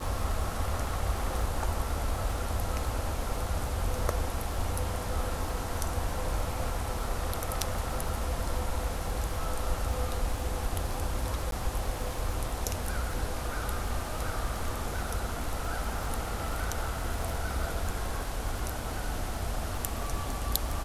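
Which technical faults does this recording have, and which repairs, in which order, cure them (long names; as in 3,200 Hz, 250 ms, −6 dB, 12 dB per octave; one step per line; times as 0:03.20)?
surface crackle 30 per second −35 dBFS
0:11.51–0:11.52: drop-out 12 ms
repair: click removal
repair the gap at 0:11.51, 12 ms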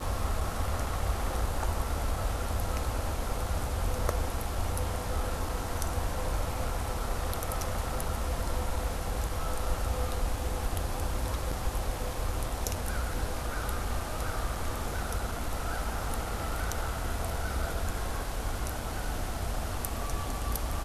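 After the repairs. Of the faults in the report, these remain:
none of them is left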